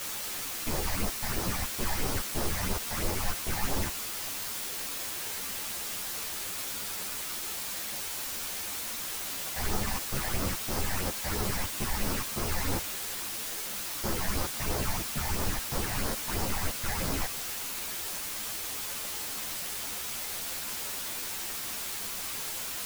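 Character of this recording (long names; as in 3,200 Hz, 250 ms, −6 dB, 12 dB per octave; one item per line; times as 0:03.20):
aliases and images of a low sample rate 3,600 Hz, jitter 0%
phaser sweep stages 8, 3 Hz, lowest notch 360–3,100 Hz
a quantiser's noise floor 6 bits, dither triangular
a shimmering, thickened sound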